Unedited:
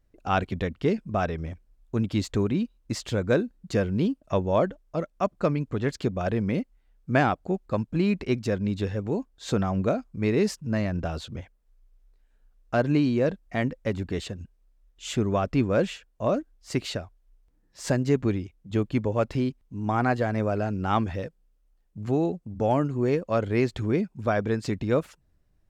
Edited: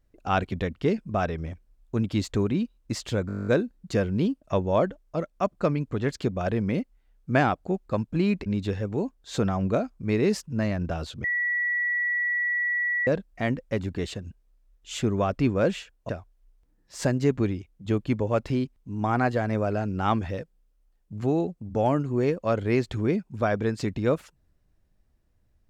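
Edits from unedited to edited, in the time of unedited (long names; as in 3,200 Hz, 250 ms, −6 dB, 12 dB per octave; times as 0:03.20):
0:03.27: stutter 0.02 s, 11 plays
0:08.26–0:08.60: remove
0:11.38–0:13.21: beep over 1,940 Hz −23 dBFS
0:16.23–0:16.94: remove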